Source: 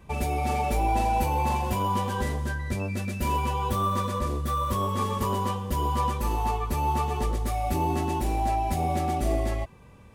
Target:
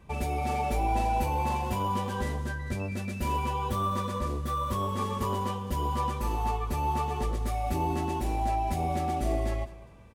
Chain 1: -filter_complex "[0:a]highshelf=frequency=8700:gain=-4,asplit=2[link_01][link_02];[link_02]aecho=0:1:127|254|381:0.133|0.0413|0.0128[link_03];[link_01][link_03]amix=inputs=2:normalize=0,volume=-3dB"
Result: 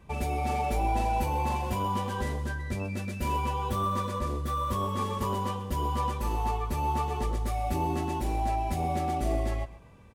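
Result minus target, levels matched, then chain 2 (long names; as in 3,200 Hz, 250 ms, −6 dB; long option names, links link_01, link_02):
echo 73 ms early
-filter_complex "[0:a]highshelf=frequency=8700:gain=-4,asplit=2[link_01][link_02];[link_02]aecho=0:1:200|400|600:0.133|0.0413|0.0128[link_03];[link_01][link_03]amix=inputs=2:normalize=0,volume=-3dB"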